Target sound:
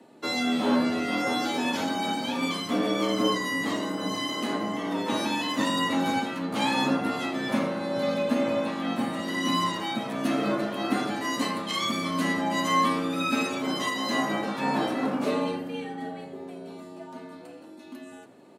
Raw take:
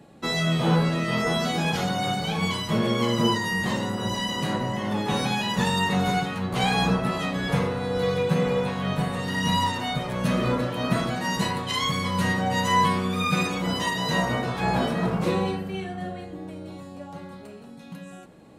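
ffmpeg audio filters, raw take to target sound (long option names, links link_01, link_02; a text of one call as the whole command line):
ffmpeg -i in.wav -filter_complex "[0:a]asplit=4[link_01][link_02][link_03][link_04];[link_02]adelay=83,afreqshift=-75,volume=-20.5dB[link_05];[link_03]adelay=166,afreqshift=-150,volume=-29.6dB[link_06];[link_04]adelay=249,afreqshift=-225,volume=-38.7dB[link_07];[link_01][link_05][link_06][link_07]amix=inputs=4:normalize=0,afreqshift=82,volume=-2.5dB" out.wav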